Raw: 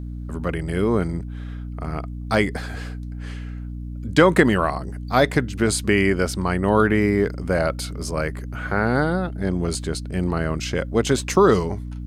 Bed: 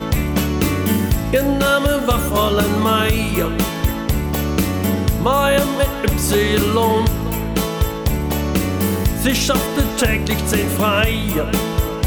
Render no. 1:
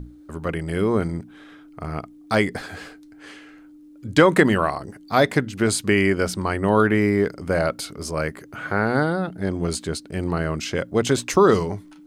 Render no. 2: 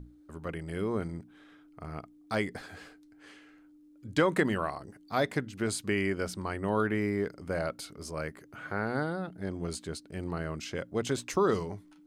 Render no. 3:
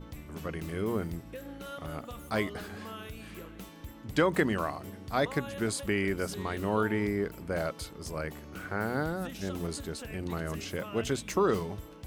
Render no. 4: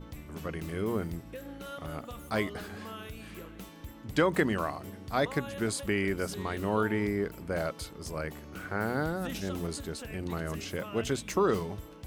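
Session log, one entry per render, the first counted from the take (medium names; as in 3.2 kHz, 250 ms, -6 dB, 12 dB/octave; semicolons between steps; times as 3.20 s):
hum notches 60/120/180/240 Hz
trim -11 dB
add bed -27 dB
8.75–9.64 s: decay stretcher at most 30 dB/s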